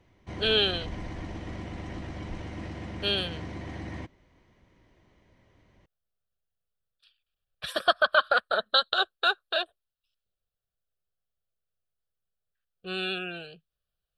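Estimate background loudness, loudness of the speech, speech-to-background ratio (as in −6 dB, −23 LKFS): −39.0 LKFS, −26.5 LKFS, 12.5 dB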